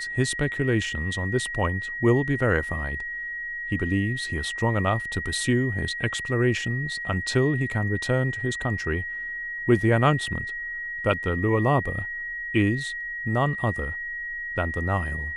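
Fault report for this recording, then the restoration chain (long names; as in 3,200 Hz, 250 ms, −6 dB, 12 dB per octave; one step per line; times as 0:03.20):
whistle 1,900 Hz −30 dBFS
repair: notch filter 1,900 Hz, Q 30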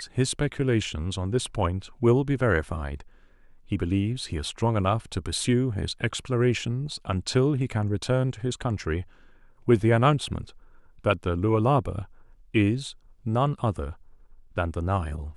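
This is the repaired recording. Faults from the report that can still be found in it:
none of them is left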